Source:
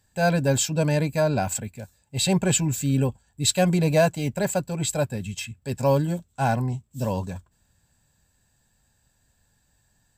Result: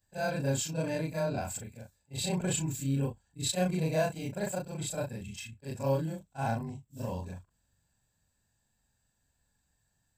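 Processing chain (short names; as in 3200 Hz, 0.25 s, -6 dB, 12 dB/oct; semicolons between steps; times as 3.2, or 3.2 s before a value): short-time reversal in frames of 88 ms; gain -6.5 dB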